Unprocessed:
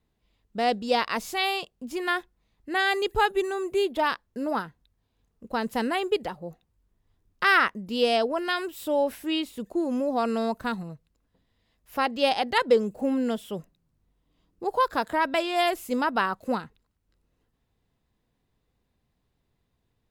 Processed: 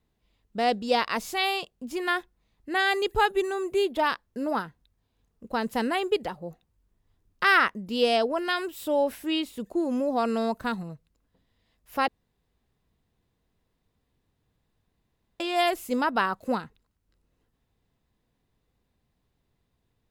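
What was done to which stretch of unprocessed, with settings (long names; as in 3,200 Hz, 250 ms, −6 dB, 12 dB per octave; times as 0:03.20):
0:12.08–0:15.40: fill with room tone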